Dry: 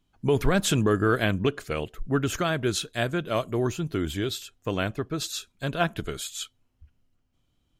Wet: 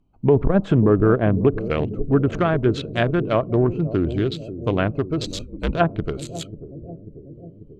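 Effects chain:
adaptive Wiener filter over 25 samples
treble cut that deepens with the level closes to 960 Hz, closed at −20 dBFS
bucket-brigade delay 541 ms, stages 2,048, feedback 68%, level −12.5 dB
0:05.26–0:05.75: frequency shifter −85 Hz
saturating transformer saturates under 75 Hz
level +7.5 dB

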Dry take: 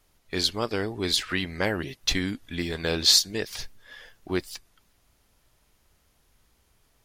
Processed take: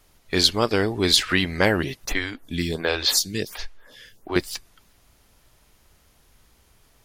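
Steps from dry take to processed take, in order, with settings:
0:02.05–0:04.36: phaser with staggered stages 1.4 Hz
level +7 dB

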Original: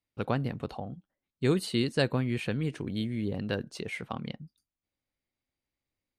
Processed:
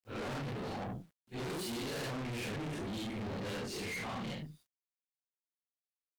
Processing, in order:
random phases in long frames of 200 ms
parametric band 160 Hz −4 dB 0.34 octaves
in parallel at 0 dB: brickwall limiter −24 dBFS, peak gain reduction 8.5 dB
on the sum: tube saturation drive 40 dB, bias 0.65
bit-depth reduction 12 bits, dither none
level +2 dB

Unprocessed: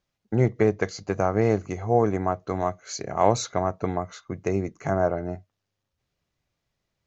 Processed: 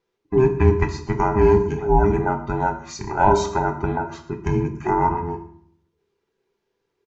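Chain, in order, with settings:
frequency inversion band by band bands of 500 Hz
high-shelf EQ 4,700 Hz −9.5 dB
single-tap delay 123 ms −21 dB
on a send at −4 dB: convolution reverb RT60 0.65 s, pre-delay 3 ms
on the sum: level +2.5 dB

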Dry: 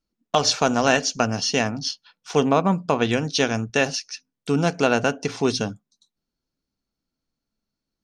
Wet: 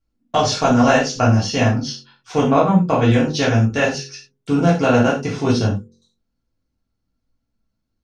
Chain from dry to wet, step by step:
spectral tilt −2 dB per octave
hum removal 45.71 Hz, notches 11
convolution reverb, pre-delay 3 ms, DRR −6.5 dB
level −3.5 dB

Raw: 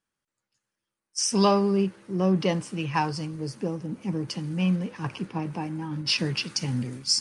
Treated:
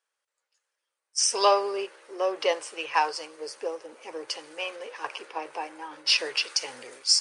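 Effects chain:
elliptic band-pass filter 480–9,500 Hz, stop band 40 dB
level +3.5 dB

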